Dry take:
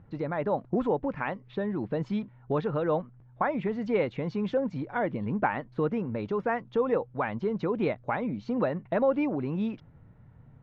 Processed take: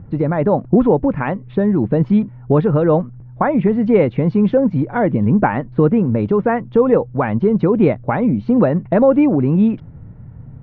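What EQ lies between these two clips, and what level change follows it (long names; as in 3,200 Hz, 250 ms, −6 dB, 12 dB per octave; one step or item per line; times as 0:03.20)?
low-pass filter 3,000 Hz 12 dB per octave
low-shelf EQ 460 Hz +11 dB
+7.5 dB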